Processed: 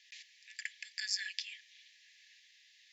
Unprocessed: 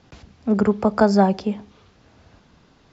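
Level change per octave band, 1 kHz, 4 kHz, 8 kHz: under -40 dB, +0.5 dB, no reading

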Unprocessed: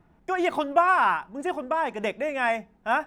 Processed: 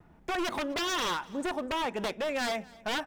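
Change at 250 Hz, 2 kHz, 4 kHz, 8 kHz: -3.0 dB, -7.5 dB, +7.0 dB, no reading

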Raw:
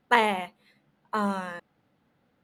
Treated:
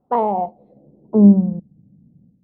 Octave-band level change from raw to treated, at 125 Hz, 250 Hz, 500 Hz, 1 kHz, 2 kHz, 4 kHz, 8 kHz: +21.0 dB, +19.5 dB, +9.0 dB, +4.0 dB, under -20 dB, under -20 dB, under -30 dB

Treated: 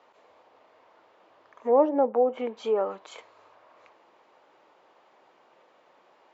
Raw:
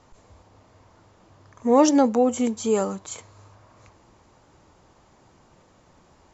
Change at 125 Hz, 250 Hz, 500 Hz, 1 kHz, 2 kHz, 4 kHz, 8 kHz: under -15 dB, -11.5 dB, -1.5 dB, -3.5 dB, -7.5 dB, -10.5 dB, no reading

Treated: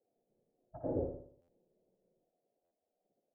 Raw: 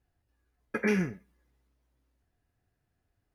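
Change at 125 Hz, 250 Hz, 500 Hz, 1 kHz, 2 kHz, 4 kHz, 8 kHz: -9.0 dB, -11.5 dB, -5.5 dB, -7.5 dB, under -40 dB, under -30 dB, under -25 dB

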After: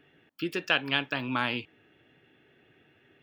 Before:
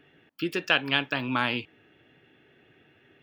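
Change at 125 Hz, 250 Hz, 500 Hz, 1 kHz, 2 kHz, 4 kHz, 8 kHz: -2.5 dB, -2.5 dB, -2.5 dB, -2.5 dB, -2.5 dB, -2.5 dB, no reading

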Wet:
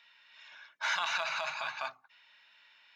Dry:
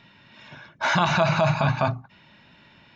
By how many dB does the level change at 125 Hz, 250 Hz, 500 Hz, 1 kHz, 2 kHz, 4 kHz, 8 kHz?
under -40 dB, under -35 dB, -19.5 dB, -12.5 dB, -7.5 dB, -5.5 dB, no reading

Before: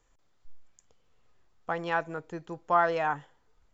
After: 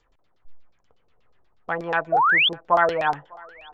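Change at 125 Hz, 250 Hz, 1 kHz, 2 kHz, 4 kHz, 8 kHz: +3.0 dB, +3.5 dB, +7.5 dB, +12.5 dB, +24.0 dB, no reading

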